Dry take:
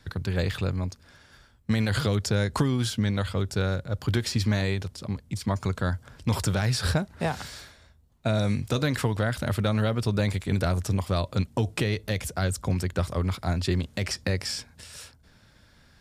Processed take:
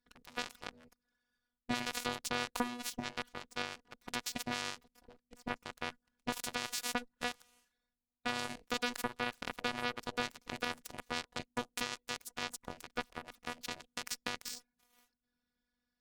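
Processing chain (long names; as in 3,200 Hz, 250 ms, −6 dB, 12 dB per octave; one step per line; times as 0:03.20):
phases set to zero 243 Hz
harmonic generator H 2 −22 dB, 3 −21 dB, 7 −21 dB, 8 −22 dB, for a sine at −11 dBFS
level −4 dB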